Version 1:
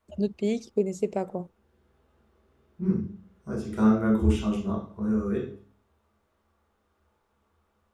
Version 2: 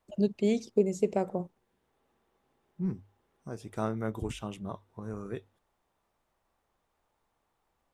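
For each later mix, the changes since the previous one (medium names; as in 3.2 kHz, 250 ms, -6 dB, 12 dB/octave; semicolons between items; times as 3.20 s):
reverb: off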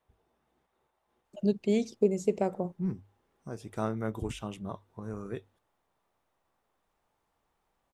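first voice: entry +1.25 s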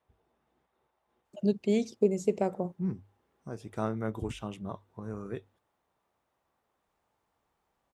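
second voice: add treble shelf 5.2 kHz -5 dB; master: add high-pass 44 Hz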